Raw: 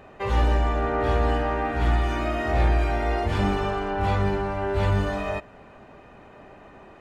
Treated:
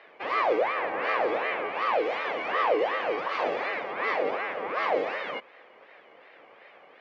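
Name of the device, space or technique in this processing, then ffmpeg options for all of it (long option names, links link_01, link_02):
voice changer toy: -af "aeval=exprs='val(0)*sin(2*PI*800*n/s+800*0.55/2.7*sin(2*PI*2.7*n/s))':channel_layout=same,highpass=490,equalizer=frequency=500:width_type=q:width=4:gain=6,equalizer=frequency=950:width_type=q:width=4:gain=-5,equalizer=frequency=1400:width_type=q:width=4:gain=-7,equalizer=frequency=2200:width_type=q:width=4:gain=4,equalizer=frequency=3700:width_type=q:width=4:gain=-4,lowpass=frequency=4800:width=0.5412,lowpass=frequency=4800:width=1.3066"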